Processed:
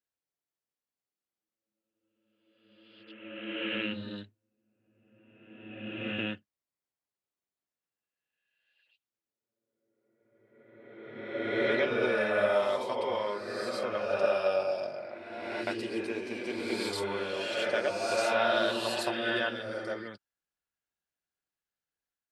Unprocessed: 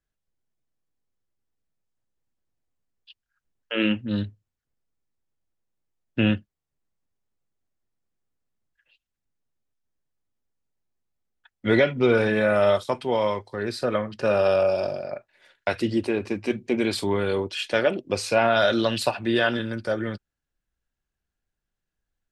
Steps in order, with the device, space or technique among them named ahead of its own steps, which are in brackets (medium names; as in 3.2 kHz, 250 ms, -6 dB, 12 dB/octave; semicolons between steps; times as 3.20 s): ghost voice (reverse; reverberation RT60 1.9 s, pre-delay 76 ms, DRR -1.5 dB; reverse; high-pass 520 Hz 6 dB/octave); trim -8 dB